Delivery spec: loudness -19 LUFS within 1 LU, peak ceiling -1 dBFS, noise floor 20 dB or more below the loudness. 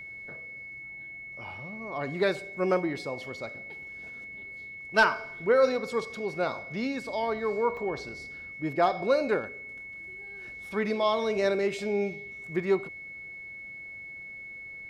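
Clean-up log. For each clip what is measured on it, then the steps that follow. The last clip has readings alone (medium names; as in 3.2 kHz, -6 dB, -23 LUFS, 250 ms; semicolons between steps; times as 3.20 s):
dropouts 1; longest dropout 1.5 ms; steady tone 2.2 kHz; tone level -40 dBFS; loudness -30.5 LUFS; peak level -12.0 dBFS; loudness target -19.0 LUFS
-> interpolate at 7.77 s, 1.5 ms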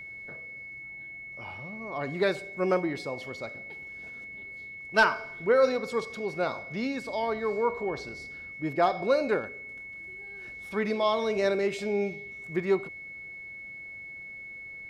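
dropouts 0; steady tone 2.2 kHz; tone level -40 dBFS
-> band-stop 2.2 kHz, Q 30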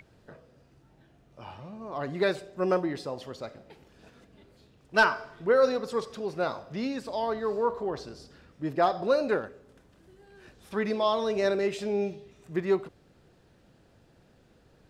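steady tone not found; loudness -29.0 LUFS; peak level -11.5 dBFS; loudness target -19.0 LUFS
-> trim +10 dB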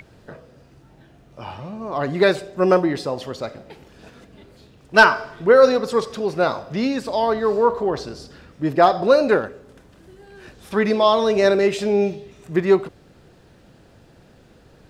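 loudness -19.0 LUFS; peak level -1.5 dBFS; noise floor -51 dBFS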